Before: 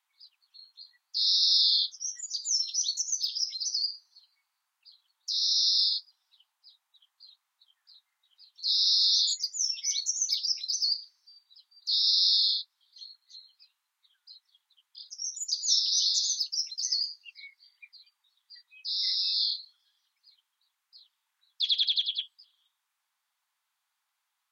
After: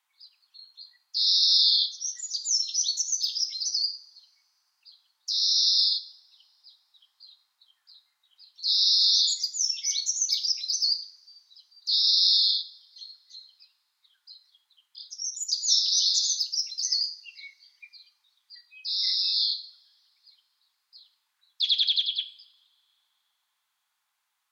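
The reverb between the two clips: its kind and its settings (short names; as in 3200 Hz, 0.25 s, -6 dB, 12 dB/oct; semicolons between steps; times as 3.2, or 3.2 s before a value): two-slope reverb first 0.57 s, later 3.2 s, from -28 dB, DRR 11 dB; gain +2.5 dB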